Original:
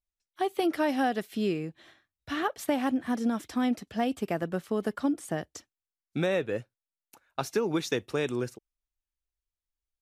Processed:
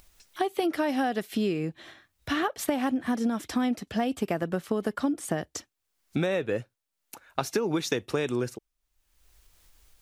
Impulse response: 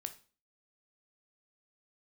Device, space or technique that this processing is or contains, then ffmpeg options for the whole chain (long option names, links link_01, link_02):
upward and downward compression: -af "acompressor=mode=upward:threshold=-46dB:ratio=2.5,acompressor=threshold=-32dB:ratio=4,volume=7.5dB"